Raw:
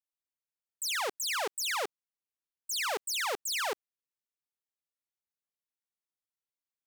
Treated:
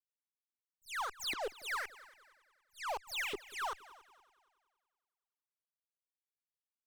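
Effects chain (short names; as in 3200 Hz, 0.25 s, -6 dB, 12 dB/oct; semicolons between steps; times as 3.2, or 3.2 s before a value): notch 5500 Hz, Q 20; in parallel at -1.5 dB: limiter -35.5 dBFS, peak gain reduction 9 dB; on the sum: LFO band-pass saw up 1.5 Hz 330–3200 Hz; soft clip -39.5 dBFS, distortion -8 dB; added harmonics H 2 -19 dB, 6 -23 dB, 7 -17 dB, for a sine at -39.5 dBFS; on a send: multi-head echo 94 ms, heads second and third, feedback 41%, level -21 dB; on the sum: gain +5 dB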